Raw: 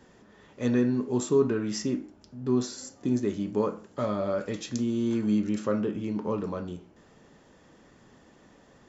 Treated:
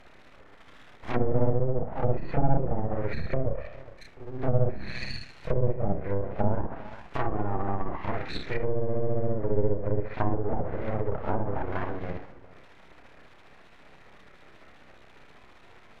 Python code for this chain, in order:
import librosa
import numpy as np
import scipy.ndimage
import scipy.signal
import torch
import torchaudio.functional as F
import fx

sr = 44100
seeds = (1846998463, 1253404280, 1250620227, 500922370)

p1 = fx.freq_compress(x, sr, knee_hz=1500.0, ratio=4.0)
p2 = p1 + fx.echo_single(p1, sr, ms=226, db=-20.5, dry=0)
p3 = fx.stretch_grains(p2, sr, factor=1.8, grain_ms=136.0)
p4 = np.abs(p3)
p5 = fx.env_lowpass_down(p4, sr, base_hz=550.0, full_db=-25.0)
y = p5 * librosa.db_to_amplitude(6.5)